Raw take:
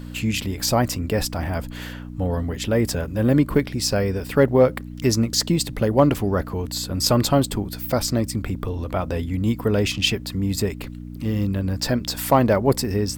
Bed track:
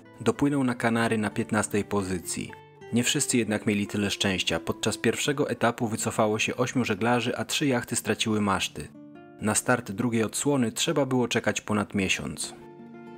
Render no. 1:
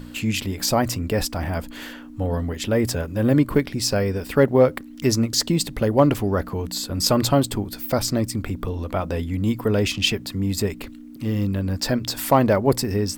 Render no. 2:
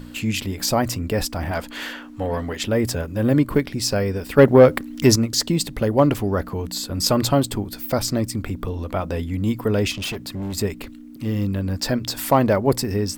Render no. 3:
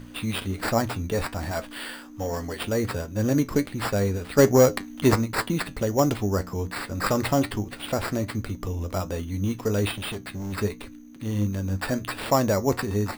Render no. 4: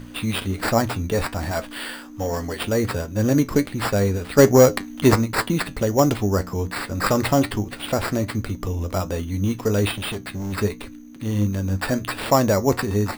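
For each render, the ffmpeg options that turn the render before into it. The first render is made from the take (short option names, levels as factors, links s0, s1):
-af "bandreject=f=60:t=h:w=4,bandreject=f=120:t=h:w=4,bandreject=f=180:t=h:w=4"
-filter_complex "[0:a]asettb=1/sr,asplit=3[s0][s1][s2];[s0]atrim=end=1.514[s3];[s1]atrim=start=1.51:end=2.63,asetpts=PTS-STARTPTS,afade=t=in:d=0.004:c=qsin,afade=t=out:st=1.116:d=0.004:c=qsin,asplit=2[s4][s5];[s5]highpass=f=720:p=1,volume=3.98,asoftclip=type=tanh:threshold=0.237[s6];[s4][s6]amix=inputs=2:normalize=0,lowpass=f=5400:p=1,volume=0.501[s7];[s2]atrim=start=2.626[s8];[s3][s7]acrossfade=d=0.004:c1=hsin:c2=qsin[s9];[s9][s8]acrossfade=d=0.004:c1=qsin:c2=hsin,asettb=1/sr,asplit=3[s10][s11][s12];[s10]atrim=end=4.384[s13];[s11]atrim=start=4.38:end=5.16,asetpts=PTS-STARTPTS,afade=t=in:d=0.004:c=qsin,afade=t=out:st=0.776:d=0.004:c=qsin,acontrast=62[s14];[s12]atrim=start=5.156[s15];[s13][s14]acrossfade=d=0.004:c1=hsin:c2=qsin[s16];[s16][s15]acrossfade=d=0.004:c1=qsin:c2=hsin,asettb=1/sr,asplit=3[s17][s18][s19];[s17]atrim=end=9.914[s20];[s18]atrim=start=9.91:end=10.58,asetpts=PTS-STARTPTS,afade=t=in:d=0.004:c=qsin,afade=t=out:st=0.666:d=0.004:c=qsin,volume=18.8,asoftclip=hard,volume=0.0531[s21];[s19]atrim=start=10.576[s22];[s20][s21]acrossfade=d=0.004:c1=hsin:c2=qsin[s23];[s23][s22]acrossfade=d=0.004:c1=qsin:c2=hsin"
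-af "acrusher=samples=7:mix=1:aa=0.000001,flanger=delay=8.7:depth=2.9:regen=68:speed=1.3:shape=triangular"
-af "volume=1.58"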